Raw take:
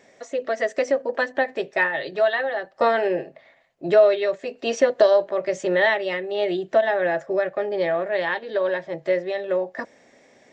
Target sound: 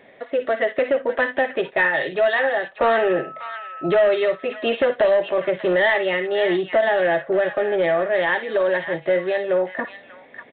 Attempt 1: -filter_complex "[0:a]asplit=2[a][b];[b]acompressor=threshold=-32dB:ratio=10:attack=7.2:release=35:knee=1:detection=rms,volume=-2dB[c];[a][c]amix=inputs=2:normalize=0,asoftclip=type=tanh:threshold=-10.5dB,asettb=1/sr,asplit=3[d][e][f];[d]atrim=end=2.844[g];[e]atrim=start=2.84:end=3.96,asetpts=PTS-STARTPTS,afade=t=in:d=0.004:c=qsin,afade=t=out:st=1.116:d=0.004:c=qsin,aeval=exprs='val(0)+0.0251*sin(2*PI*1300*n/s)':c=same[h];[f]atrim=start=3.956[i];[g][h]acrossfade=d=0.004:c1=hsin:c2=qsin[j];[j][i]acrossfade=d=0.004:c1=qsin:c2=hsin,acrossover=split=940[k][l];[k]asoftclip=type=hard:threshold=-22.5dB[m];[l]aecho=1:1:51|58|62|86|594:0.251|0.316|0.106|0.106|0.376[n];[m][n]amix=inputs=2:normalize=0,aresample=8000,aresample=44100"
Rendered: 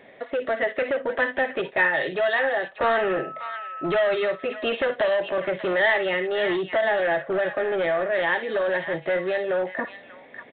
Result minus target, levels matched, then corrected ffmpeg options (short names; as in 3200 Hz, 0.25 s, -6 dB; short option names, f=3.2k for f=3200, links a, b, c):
hard clip: distortion +16 dB; compressor: peak gain reduction +10 dB
-filter_complex "[0:a]asplit=2[a][b];[b]acompressor=threshold=-21dB:ratio=10:attack=7.2:release=35:knee=1:detection=rms,volume=-2dB[c];[a][c]amix=inputs=2:normalize=0,asoftclip=type=tanh:threshold=-10.5dB,asettb=1/sr,asplit=3[d][e][f];[d]atrim=end=2.844[g];[e]atrim=start=2.84:end=3.96,asetpts=PTS-STARTPTS,afade=t=in:d=0.004:c=qsin,afade=t=out:st=1.116:d=0.004:c=qsin,aeval=exprs='val(0)+0.0251*sin(2*PI*1300*n/s)':c=same[h];[f]atrim=start=3.956[i];[g][h]acrossfade=d=0.004:c1=hsin:c2=qsin[j];[j][i]acrossfade=d=0.004:c1=qsin:c2=hsin,acrossover=split=940[k][l];[k]asoftclip=type=hard:threshold=-14dB[m];[l]aecho=1:1:51|58|62|86|594:0.251|0.316|0.106|0.106|0.376[n];[m][n]amix=inputs=2:normalize=0,aresample=8000,aresample=44100"